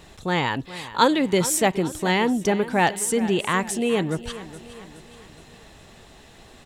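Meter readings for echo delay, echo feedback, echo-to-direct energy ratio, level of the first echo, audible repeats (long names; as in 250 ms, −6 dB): 419 ms, 50%, −14.5 dB, −15.5 dB, 4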